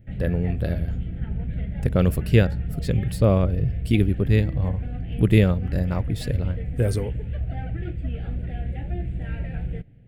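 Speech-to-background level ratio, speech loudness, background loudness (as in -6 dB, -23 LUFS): 7.5 dB, -23.5 LUFS, -31.0 LUFS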